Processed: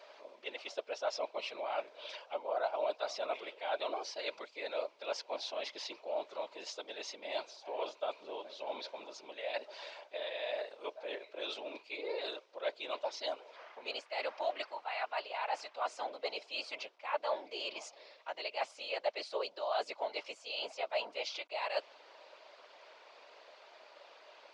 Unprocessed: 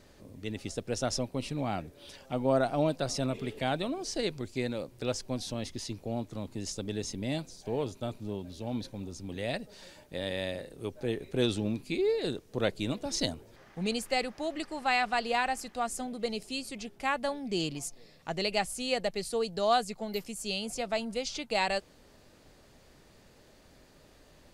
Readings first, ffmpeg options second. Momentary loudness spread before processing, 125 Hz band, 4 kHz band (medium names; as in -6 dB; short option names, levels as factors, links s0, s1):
10 LU, under -40 dB, -5.0 dB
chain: -af "equalizer=f=2000:t=o:w=2.4:g=13.5,areverse,acompressor=threshold=0.0282:ratio=10,areverse,afftfilt=real='hypot(re,im)*cos(2*PI*random(0))':imag='hypot(re,im)*sin(2*PI*random(1))':win_size=512:overlap=0.75,acrusher=bits=11:mix=0:aa=0.000001,highpass=f=420:w=0.5412,highpass=f=420:w=1.3066,equalizer=f=610:t=q:w=4:g=9,equalizer=f=960:t=q:w=4:g=7,equalizer=f=1800:t=q:w=4:g=-8,lowpass=f=5400:w=0.5412,lowpass=f=5400:w=1.3066,volume=1.19"